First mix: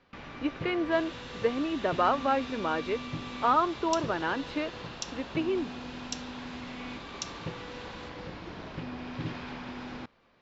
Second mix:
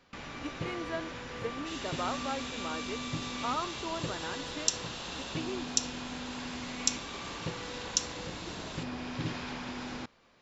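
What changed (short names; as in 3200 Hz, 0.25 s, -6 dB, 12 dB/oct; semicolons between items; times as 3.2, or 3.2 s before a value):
speech -10.5 dB; second sound: entry +0.75 s; master: remove air absorption 160 m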